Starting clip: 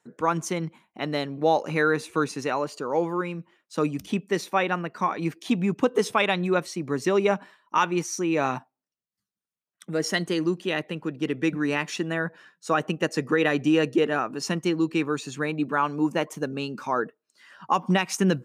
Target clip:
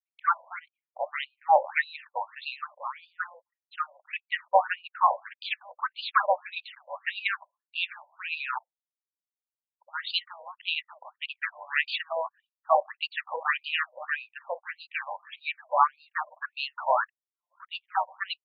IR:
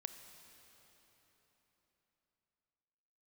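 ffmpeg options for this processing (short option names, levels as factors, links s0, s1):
-filter_complex "[0:a]asplit=3[s0][s1][s2];[s1]asetrate=29433,aresample=44100,atempo=1.49831,volume=0.398[s3];[s2]asetrate=33038,aresample=44100,atempo=1.33484,volume=0.158[s4];[s0][s3][s4]amix=inputs=3:normalize=0,anlmdn=0.1,afftfilt=real='re*between(b*sr/1024,710*pow(3500/710,0.5+0.5*sin(2*PI*1.7*pts/sr))/1.41,710*pow(3500/710,0.5+0.5*sin(2*PI*1.7*pts/sr))*1.41)':imag='im*between(b*sr/1024,710*pow(3500/710,0.5+0.5*sin(2*PI*1.7*pts/sr))/1.41,710*pow(3500/710,0.5+0.5*sin(2*PI*1.7*pts/sr))*1.41)':win_size=1024:overlap=0.75,volume=1.68"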